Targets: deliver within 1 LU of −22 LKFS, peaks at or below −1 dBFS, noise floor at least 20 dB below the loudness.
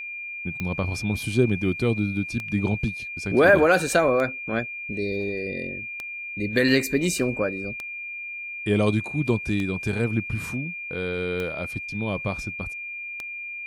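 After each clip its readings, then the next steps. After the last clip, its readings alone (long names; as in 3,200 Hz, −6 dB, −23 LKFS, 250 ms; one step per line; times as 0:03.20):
number of clicks 8; interfering tone 2,400 Hz; level of the tone −32 dBFS; integrated loudness −25.0 LKFS; sample peak −7.0 dBFS; target loudness −22.0 LKFS
→ click removal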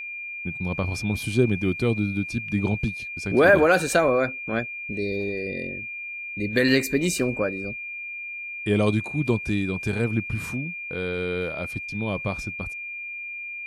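number of clicks 0; interfering tone 2,400 Hz; level of the tone −32 dBFS
→ notch filter 2,400 Hz, Q 30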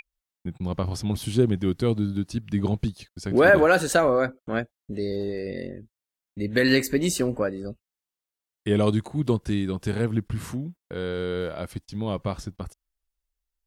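interfering tone none found; integrated loudness −25.0 LKFS; sample peak −7.0 dBFS; target loudness −22.0 LKFS
→ level +3 dB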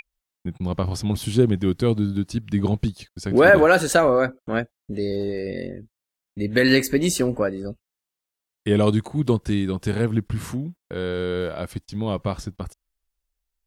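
integrated loudness −22.0 LKFS; sample peak −4.0 dBFS; background noise floor −87 dBFS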